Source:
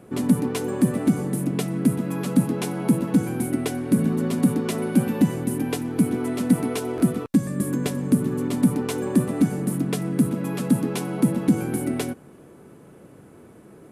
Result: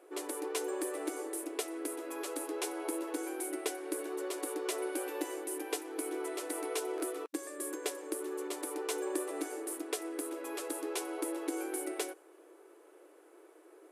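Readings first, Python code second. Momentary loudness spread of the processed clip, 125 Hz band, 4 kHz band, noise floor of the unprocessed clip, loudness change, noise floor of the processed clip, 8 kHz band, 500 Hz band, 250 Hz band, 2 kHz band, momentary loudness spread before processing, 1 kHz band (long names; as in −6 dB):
3 LU, below −40 dB, −6.0 dB, −48 dBFS, −14.5 dB, −59 dBFS, −4.0 dB, −7.5 dB, −19.5 dB, −7.0 dB, 5 LU, −7.5 dB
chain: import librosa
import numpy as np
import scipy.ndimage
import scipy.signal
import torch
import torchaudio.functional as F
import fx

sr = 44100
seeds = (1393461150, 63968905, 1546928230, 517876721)

y = fx.brickwall_highpass(x, sr, low_hz=300.0)
y = fx.dynamic_eq(y, sr, hz=7900.0, q=0.79, threshold_db=-49.0, ratio=4.0, max_db=4)
y = F.gain(torch.from_numpy(y), -7.5).numpy()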